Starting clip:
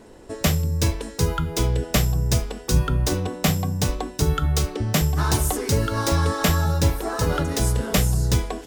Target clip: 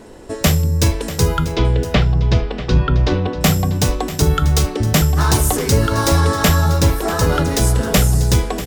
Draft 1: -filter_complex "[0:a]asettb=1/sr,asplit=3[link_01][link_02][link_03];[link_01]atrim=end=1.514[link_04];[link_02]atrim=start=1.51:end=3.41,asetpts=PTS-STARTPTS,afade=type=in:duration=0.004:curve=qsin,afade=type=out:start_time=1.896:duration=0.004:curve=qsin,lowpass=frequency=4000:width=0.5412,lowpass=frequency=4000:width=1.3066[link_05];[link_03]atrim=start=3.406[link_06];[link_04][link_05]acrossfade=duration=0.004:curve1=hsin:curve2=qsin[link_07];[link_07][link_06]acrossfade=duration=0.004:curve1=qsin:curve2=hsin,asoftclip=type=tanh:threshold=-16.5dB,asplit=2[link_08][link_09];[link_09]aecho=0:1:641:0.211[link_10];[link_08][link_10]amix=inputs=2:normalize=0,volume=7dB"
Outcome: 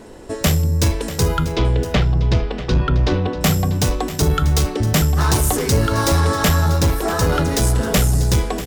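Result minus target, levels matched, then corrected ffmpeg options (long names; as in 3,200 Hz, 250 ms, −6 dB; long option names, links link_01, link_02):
soft clipping: distortion +9 dB
-filter_complex "[0:a]asettb=1/sr,asplit=3[link_01][link_02][link_03];[link_01]atrim=end=1.514[link_04];[link_02]atrim=start=1.51:end=3.41,asetpts=PTS-STARTPTS,afade=type=in:duration=0.004:curve=qsin,afade=type=out:start_time=1.896:duration=0.004:curve=qsin,lowpass=frequency=4000:width=0.5412,lowpass=frequency=4000:width=1.3066[link_05];[link_03]atrim=start=3.406[link_06];[link_04][link_05]acrossfade=duration=0.004:curve1=hsin:curve2=qsin[link_07];[link_07][link_06]acrossfade=duration=0.004:curve1=qsin:curve2=hsin,asoftclip=type=tanh:threshold=-10dB,asplit=2[link_08][link_09];[link_09]aecho=0:1:641:0.211[link_10];[link_08][link_10]amix=inputs=2:normalize=0,volume=7dB"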